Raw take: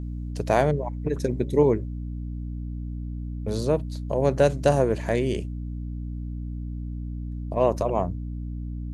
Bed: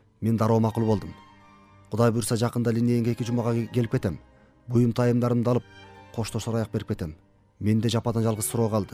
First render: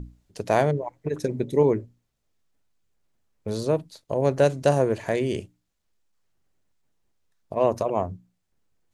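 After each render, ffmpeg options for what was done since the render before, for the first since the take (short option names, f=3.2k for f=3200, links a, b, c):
-af "bandreject=f=60:t=h:w=6,bandreject=f=120:t=h:w=6,bandreject=f=180:t=h:w=6,bandreject=f=240:t=h:w=6,bandreject=f=300:t=h:w=6"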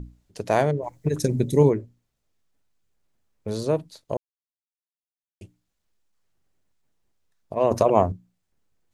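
-filter_complex "[0:a]asplit=3[a][b][c];[a]afade=t=out:st=0.82:d=0.02[d];[b]bass=f=250:g=9,treble=f=4k:g=12,afade=t=in:st=0.82:d=0.02,afade=t=out:st=1.68:d=0.02[e];[c]afade=t=in:st=1.68:d=0.02[f];[d][e][f]amix=inputs=3:normalize=0,asplit=5[g][h][i][j][k];[g]atrim=end=4.17,asetpts=PTS-STARTPTS,afade=t=out:st=4.166:d=0.004:c=hsin[l];[h]atrim=start=4.17:end=5.41,asetpts=PTS-STARTPTS,volume=0[m];[i]atrim=start=5.41:end=7.712,asetpts=PTS-STARTPTS,afade=t=in:d=0.004:c=hsin[n];[j]atrim=start=7.708:end=8.122,asetpts=PTS-STARTPTS,volume=7dB[o];[k]atrim=start=8.118[p];[l][m][n]concat=n=3:v=0:a=1[q];[q][o]acrossfade=d=0.004:c1=hsin:c2=hsin[r];[r][p]acrossfade=d=0.004:c1=hsin:c2=hsin"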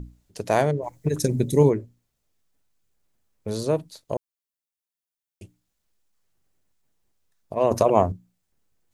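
-af "highshelf=f=7.2k:g=6.5"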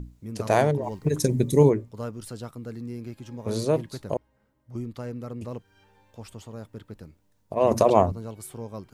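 -filter_complex "[1:a]volume=-13dB[a];[0:a][a]amix=inputs=2:normalize=0"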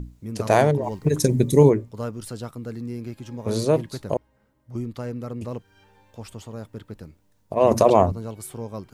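-af "volume=3.5dB,alimiter=limit=-3dB:level=0:latency=1"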